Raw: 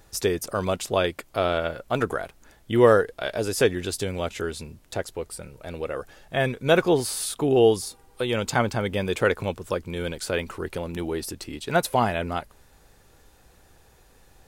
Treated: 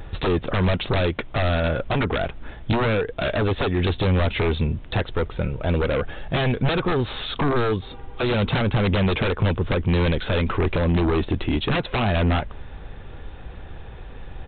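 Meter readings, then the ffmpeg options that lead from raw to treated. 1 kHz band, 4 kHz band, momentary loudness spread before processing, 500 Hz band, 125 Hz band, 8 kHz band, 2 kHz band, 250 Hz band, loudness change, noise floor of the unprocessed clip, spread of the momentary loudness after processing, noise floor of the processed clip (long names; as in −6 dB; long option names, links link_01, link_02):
+0.5 dB, +3.5 dB, 14 LU, −1.0 dB, +10.0 dB, below −40 dB, +2.5 dB, +4.5 dB, +2.0 dB, −57 dBFS, 20 LU, −39 dBFS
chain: -af "acompressor=threshold=-26dB:ratio=6,aresample=8000,aeval=exprs='0.133*sin(PI/2*3.55*val(0)/0.133)':channel_layout=same,aresample=44100,lowshelf=frequency=190:gain=8.5,volume=-2dB"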